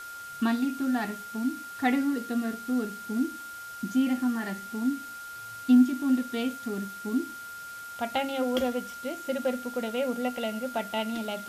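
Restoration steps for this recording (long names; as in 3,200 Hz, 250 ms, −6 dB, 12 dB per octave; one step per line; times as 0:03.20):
notch filter 1,400 Hz, Q 30
broadband denoise 30 dB, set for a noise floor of −41 dBFS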